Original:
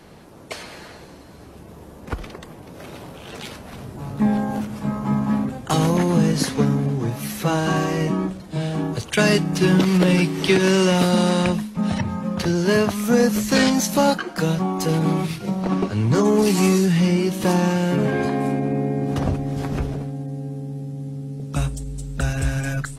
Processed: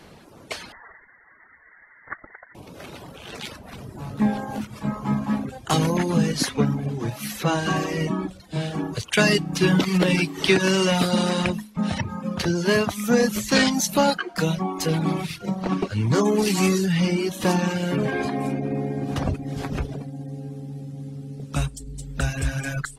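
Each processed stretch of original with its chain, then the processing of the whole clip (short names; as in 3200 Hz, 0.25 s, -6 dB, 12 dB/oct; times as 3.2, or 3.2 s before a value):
0.72–2.55 steep high-pass 620 Hz + inverted band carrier 2600 Hz
whole clip: reverb removal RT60 0.78 s; bell 3100 Hz +3.5 dB 2.6 oct; gain -1.5 dB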